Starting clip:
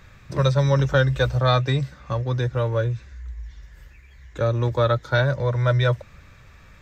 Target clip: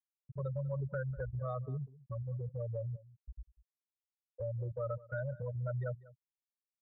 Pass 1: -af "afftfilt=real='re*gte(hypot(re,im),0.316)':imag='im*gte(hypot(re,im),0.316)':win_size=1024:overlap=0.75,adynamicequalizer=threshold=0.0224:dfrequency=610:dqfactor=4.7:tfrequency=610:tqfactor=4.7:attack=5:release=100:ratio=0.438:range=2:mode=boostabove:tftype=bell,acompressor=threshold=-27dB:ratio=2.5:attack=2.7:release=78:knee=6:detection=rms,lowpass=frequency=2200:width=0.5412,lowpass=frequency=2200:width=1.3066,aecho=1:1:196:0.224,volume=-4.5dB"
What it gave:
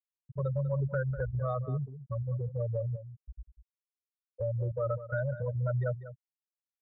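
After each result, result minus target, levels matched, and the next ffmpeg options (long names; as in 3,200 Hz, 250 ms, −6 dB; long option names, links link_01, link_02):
downward compressor: peak gain reduction −6 dB; echo-to-direct +7 dB
-af "afftfilt=real='re*gte(hypot(re,im),0.316)':imag='im*gte(hypot(re,im),0.316)':win_size=1024:overlap=0.75,adynamicequalizer=threshold=0.0224:dfrequency=610:dqfactor=4.7:tfrequency=610:tqfactor=4.7:attack=5:release=100:ratio=0.438:range=2:mode=boostabove:tftype=bell,acompressor=threshold=-37dB:ratio=2.5:attack=2.7:release=78:knee=6:detection=rms,lowpass=frequency=2200:width=0.5412,lowpass=frequency=2200:width=1.3066,aecho=1:1:196:0.224,volume=-4.5dB"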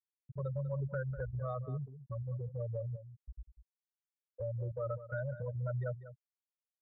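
echo-to-direct +7 dB
-af "afftfilt=real='re*gte(hypot(re,im),0.316)':imag='im*gte(hypot(re,im),0.316)':win_size=1024:overlap=0.75,adynamicequalizer=threshold=0.0224:dfrequency=610:dqfactor=4.7:tfrequency=610:tqfactor=4.7:attack=5:release=100:ratio=0.438:range=2:mode=boostabove:tftype=bell,acompressor=threshold=-37dB:ratio=2.5:attack=2.7:release=78:knee=6:detection=rms,lowpass=frequency=2200:width=0.5412,lowpass=frequency=2200:width=1.3066,aecho=1:1:196:0.1,volume=-4.5dB"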